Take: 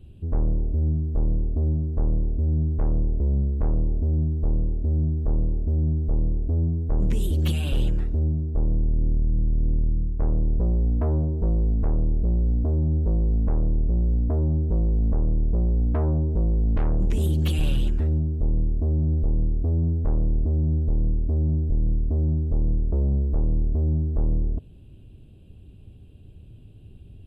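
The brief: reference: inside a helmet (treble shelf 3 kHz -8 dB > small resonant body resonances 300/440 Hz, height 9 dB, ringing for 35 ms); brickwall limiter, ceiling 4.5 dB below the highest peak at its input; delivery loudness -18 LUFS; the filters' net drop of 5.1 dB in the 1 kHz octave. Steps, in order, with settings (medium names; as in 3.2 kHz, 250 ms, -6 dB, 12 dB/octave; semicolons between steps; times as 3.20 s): peaking EQ 1 kHz -6.5 dB; peak limiter -20.5 dBFS; treble shelf 3 kHz -8 dB; small resonant body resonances 300/440 Hz, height 9 dB, ringing for 35 ms; trim +8.5 dB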